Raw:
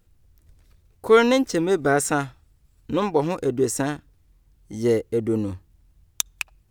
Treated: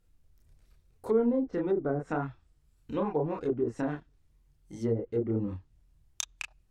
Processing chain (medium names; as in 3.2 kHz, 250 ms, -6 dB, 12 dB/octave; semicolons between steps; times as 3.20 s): chorus voices 6, 0.81 Hz, delay 30 ms, depth 4.7 ms; low-pass that closes with the level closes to 440 Hz, closed at -18 dBFS; trim -4.5 dB